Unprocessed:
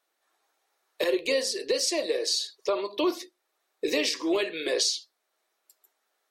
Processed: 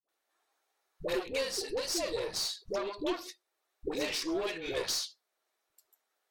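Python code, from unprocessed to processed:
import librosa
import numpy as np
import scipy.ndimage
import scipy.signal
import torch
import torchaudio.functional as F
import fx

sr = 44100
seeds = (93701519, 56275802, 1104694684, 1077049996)

y = fx.tube_stage(x, sr, drive_db=25.0, bias=0.55)
y = fx.dispersion(y, sr, late='highs', ms=88.0, hz=520.0)
y = y * librosa.db_to_amplitude(-2.5)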